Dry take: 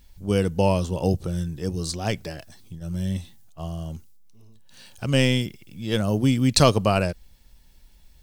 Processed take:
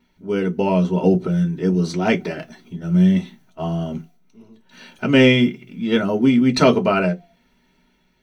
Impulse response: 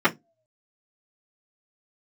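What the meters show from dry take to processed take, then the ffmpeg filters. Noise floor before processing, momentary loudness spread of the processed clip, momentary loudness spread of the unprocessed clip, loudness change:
-53 dBFS, 15 LU, 19 LU, +5.5 dB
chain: -filter_complex "[0:a]dynaudnorm=f=320:g=5:m=10dB[a];[1:a]atrim=start_sample=2205,asetrate=48510,aresample=44100[b];[a][b]afir=irnorm=-1:irlink=0,volume=-16dB"

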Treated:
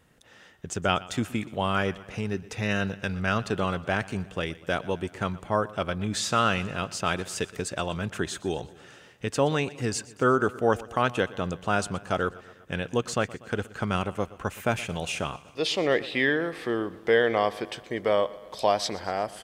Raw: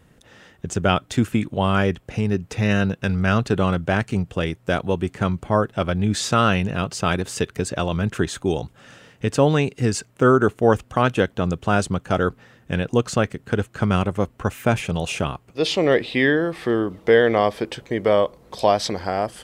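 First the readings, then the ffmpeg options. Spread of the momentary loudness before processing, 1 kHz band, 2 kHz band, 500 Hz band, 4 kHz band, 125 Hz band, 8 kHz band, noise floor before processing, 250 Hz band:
7 LU, -4.5 dB, -4.0 dB, -6.5 dB, -3.5 dB, -10.0 dB, -3.5 dB, -55 dBFS, -8.5 dB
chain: -filter_complex "[0:a]lowshelf=f=430:g=-7,asplit=2[a][b];[b]aecho=0:1:121|242|363|484|605:0.106|0.0636|0.0381|0.0229|0.0137[c];[a][c]amix=inputs=2:normalize=0,volume=-3.5dB"

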